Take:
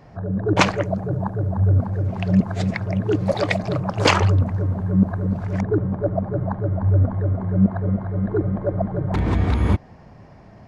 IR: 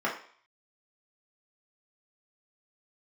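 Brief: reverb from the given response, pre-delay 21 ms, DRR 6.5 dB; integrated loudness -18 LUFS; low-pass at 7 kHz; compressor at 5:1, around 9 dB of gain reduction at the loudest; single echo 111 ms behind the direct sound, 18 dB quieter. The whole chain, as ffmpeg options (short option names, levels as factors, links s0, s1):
-filter_complex "[0:a]lowpass=7000,acompressor=threshold=0.0891:ratio=5,aecho=1:1:111:0.126,asplit=2[s0][s1];[1:a]atrim=start_sample=2205,adelay=21[s2];[s1][s2]afir=irnorm=-1:irlink=0,volume=0.141[s3];[s0][s3]amix=inputs=2:normalize=0,volume=2.51"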